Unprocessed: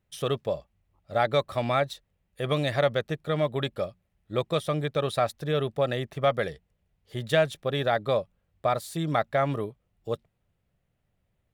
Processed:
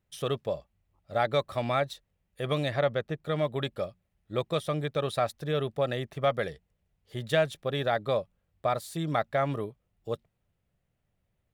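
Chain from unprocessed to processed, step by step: 2.67–3.22 s: treble shelf 5.7 kHz -> 3.5 kHz -10 dB; trim -2.5 dB

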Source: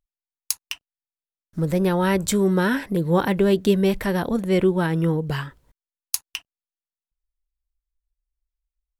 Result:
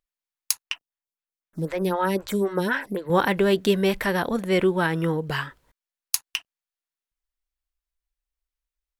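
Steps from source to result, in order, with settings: FFT filter 110 Hz 0 dB, 1.7 kHz +11 dB, 8 kHz +7 dB; 0.62–3.10 s: lamp-driven phase shifter 3.9 Hz; trim -6.5 dB

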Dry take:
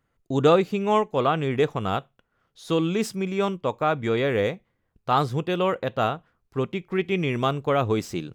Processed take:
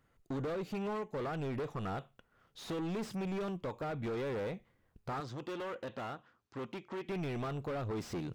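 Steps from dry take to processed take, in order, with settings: compression, threshold -27 dBFS, peak gain reduction 13.5 dB; saturation -35 dBFS, distortion -7 dB; 5.20–7.09 s: cabinet simulation 150–7000 Hz, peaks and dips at 170 Hz -10 dB, 440 Hz -5 dB, 660 Hz -4 dB, 2.2 kHz -3 dB; slew-rate limiter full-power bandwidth 17 Hz; trim +1 dB

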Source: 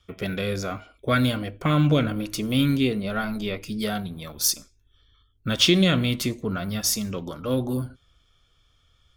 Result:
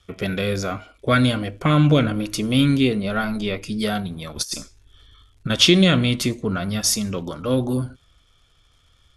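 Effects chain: 4.36–5.50 s: compressor with a negative ratio -29 dBFS, ratio -0.5; crackle 230 per s -55 dBFS; brick-wall FIR low-pass 12 kHz; trim +4 dB

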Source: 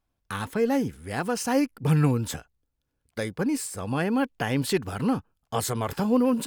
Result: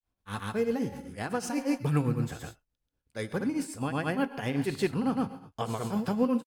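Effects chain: gated-style reverb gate 250 ms flat, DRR 9.5 dB; granulator 194 ms, grains 8 per s, pitch spread up and down by 0 st; trim -3 dB

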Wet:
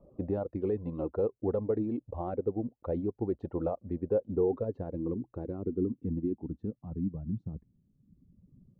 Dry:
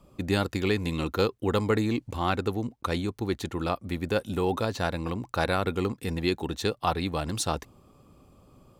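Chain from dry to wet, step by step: reverb removal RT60 1.3 s; in parallel at -2 dB: gain riding 0.5 s; on the sum: peak limiter -14.5 dBFS, peak gain reduction 7.5 dB; low-pass sweep 570 Hz -> 190 Hz, 3.80–7.44 s; trim -8.5 dB

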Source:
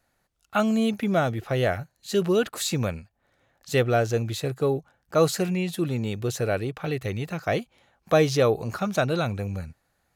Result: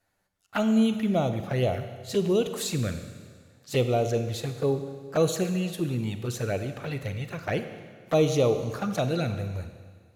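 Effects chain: Chebyshev shaper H 5 -28 dB, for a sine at -8 dBFS; touch-sensitive flanger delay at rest 10.4 ms, full sweep at -18.5 dBFS; Schroeder reverb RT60 1.7 s, combs from 32 ms, DRR 8.5 dB; trim -2 dB

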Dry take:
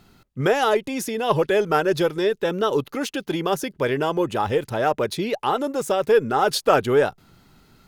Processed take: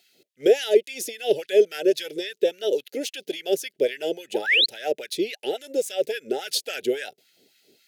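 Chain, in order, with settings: painted sound rise, 4.34–4.66 s, 760–4500 Hz -17 dBFS; Butterworth band-stop 1.1 kHz, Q 0.54; LFO high-pass sine 3.6 Hz 410–1600 Hz

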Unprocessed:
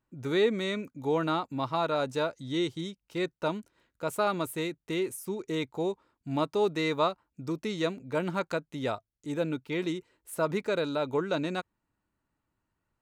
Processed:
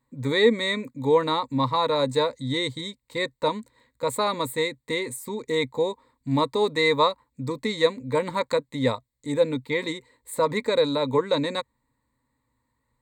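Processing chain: rippled EQ curve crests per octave 1, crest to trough 15 dB; trim +4 dB

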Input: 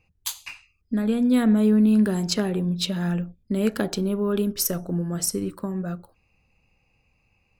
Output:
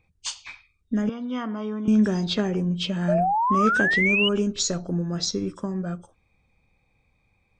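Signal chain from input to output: knee-point frequency compression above 2.1 kHz 1.5:1; 1.09–1.88 s: cabinet simulation 440–3900 Hz, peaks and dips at 470 Hz -8 dB, 690 Hz -5 dB, 1.1 kHz +7 dB, 1.7 kHz -8 dB, 2.6 kHz -10 dB, 3.7 kHz +6 dB; 3.08–4.29 s: painted sound rise 590–3000 Hz -22 dBFS

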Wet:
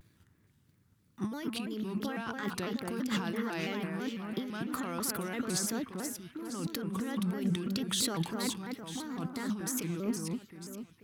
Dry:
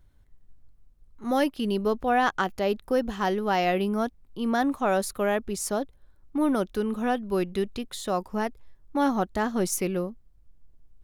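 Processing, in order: peaking EQ 660 Hz -13.5 dB 0.98 oct; compressor with a negative ratio -39 dBFS, ratio -1; high-pass 110 Hz 24 dB/octave; waveshaping leveller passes 1; on a send: echo whose repeats swap between lows and highs 238 ms, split 2.2 kHz, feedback 67%, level -3.5 dB; on the sum: vibrato with a chosen wave square 3 Hz, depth 160 cents

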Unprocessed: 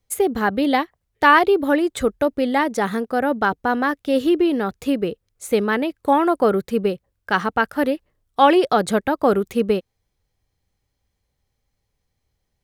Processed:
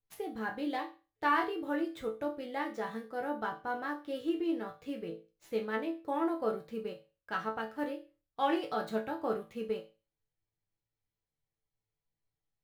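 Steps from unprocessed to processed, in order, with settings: median filter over 5 samples; chord resonator A2 sus4, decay 0.32 s; trim -2.5 dB

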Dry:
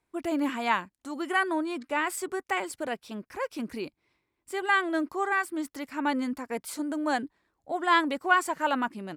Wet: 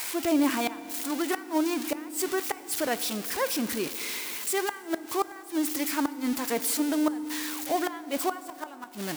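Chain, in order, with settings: zero-crossing glitches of -21.5 dBFS; treble shelf 4.9 kHz -8 dB; inverted gate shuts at -19 dBFS, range -24 dB; FDN reverb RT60 3.4 s, high-frequency decay 0.55×, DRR 14 dB; trim +4 dB

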